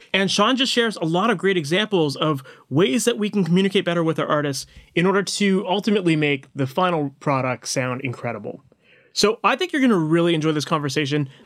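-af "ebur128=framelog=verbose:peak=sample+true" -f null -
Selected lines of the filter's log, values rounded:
Integrated loudness:
  I:         -20.5 LUFS
  Threshold: -30.7 LUFS
Loudness range:
  LRA:         2.8 LU
  Threshold: -41.1 LUFS
  LRA low:   -22.8 LUFS
  LRA high:  -20.0 LUFS
Sample peak:
  Peak:       -5.0 dBFS
True peak:
  Peak:       -4.9 dBFS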